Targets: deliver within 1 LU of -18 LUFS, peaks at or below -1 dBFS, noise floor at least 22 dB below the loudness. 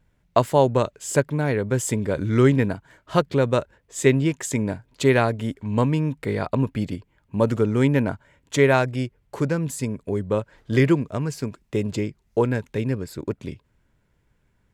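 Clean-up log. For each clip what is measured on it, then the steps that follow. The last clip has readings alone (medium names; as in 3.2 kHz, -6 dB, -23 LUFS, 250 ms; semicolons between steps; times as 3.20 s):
loudness -23.0 LUFS; peak level -2.5 dBFS; loudness target -18.0 LUFS
-> trim +5 dB; peak limiter -1 dBFS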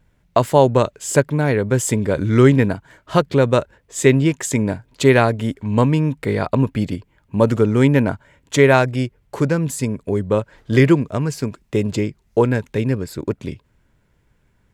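loudness -18.5 LUFS; peak level -1.0 dBFS; noise floor -61 dBFS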